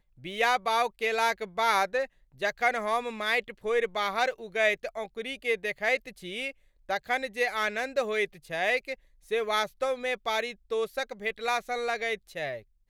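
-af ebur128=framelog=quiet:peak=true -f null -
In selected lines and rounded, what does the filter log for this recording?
Integrated loudness:
  I:         -29.2 LUFS
  Threshold: -39.3 LUFS
Loudness range:
  LRA:         2.9 LU
  Threshold: -49.4 LUFS
  LRA low:   -30.6 LUFS
  LRA high:  -27.7 LUFS
True peak:
  Peak:      -11.8 dBFS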